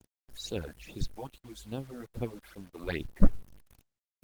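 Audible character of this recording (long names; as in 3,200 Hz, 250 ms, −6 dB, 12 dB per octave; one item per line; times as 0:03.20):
phaser sweep stages 8, 2.4 Hz, lowest notch 110–1,900 Hz
tremolo saw down 9 Hz, depth 40%
a quantiser's noise floor 10 bits, dither none
Opus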